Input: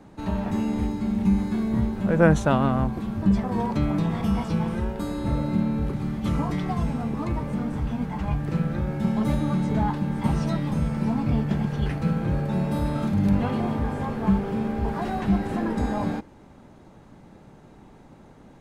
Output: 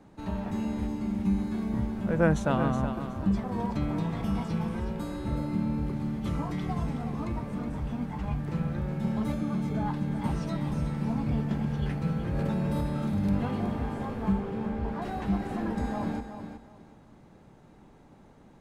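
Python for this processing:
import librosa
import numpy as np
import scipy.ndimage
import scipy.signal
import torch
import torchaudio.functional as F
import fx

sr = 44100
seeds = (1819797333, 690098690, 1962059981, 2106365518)

y = fx.notch_comb(x, sr, f0_hz=950.0, at=(9.32, 9.86))
y = fx.lowpass(y, sr, hz=3900.0, slope=6, at=(14.32, 15.02))
y = fx.echo_feedback(y, sr, ms=370, feedback_pct=23, wet_db=-9.0)
y = fx.env_flatten(y, sr, amount_pct=100, at=(12.35, 12.81))
y = y * librosa.db_to_amplitude(-6.0)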